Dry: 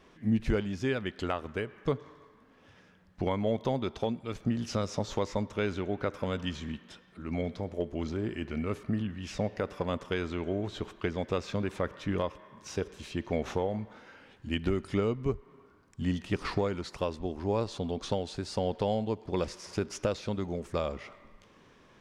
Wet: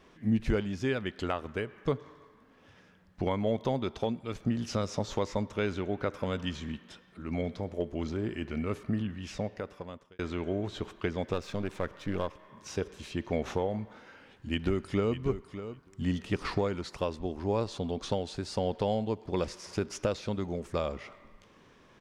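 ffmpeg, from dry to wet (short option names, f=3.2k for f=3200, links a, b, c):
-filter_complex "[0:a]asettb=1/sr,asplit=3[a][b][c];[a]atrim=end=11.334[d];[b]atrim=start=11.33:end=12.49,asetpts=PTS-STARTPTS,afade=t=in:d=0.004:c=qsin,afade=t=out:st=1.156:d=0.004:c=qsin,aeval=exprs='if(lt(val(0),0),0.447*val(0),val(0))':c=same[e];[c]atrim=start=12.486[f];[d][e]acrossfade=d=0.004:c1=hsin:c2=qsin[g];[g][f]acrossfade=d=0.004:c1=qsin:c2=hsin,asplit=2[h][i];[i]afade=t=in:st=13.99:d=0.01,afade=t=out:st=15.19:d=0.01,aecho=0:1:600|1200:0.266073|0.0266073[j];[h][j]amix=inputs=2:normalize=0,asplit=2[k][l];[k]atrim=end=10.19,asetpts=PTS-STARTPTS,afade=t=out:st=9.13:d=1.06[m];[l]atrim=start=10.19,asetpts=PTS-STARTPTS,afade=t=in:d=0.004:c=hsin[n];[m][n]concat=n=2:v=0:a=1"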